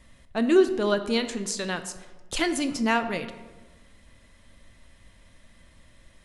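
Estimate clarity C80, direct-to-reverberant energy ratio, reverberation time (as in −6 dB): 13.5 dB, 8.5 dB, 1.3 s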